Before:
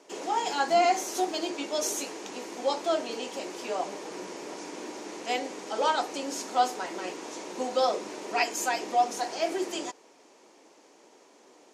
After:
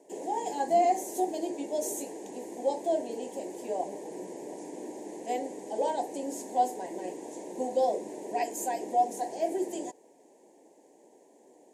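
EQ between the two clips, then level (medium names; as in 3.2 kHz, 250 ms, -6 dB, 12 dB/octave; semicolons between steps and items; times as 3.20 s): Butterworth band-stop 1.3 kHz, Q 1.1; high-order bell 3.6 kHz -15 dB; 0.0 dB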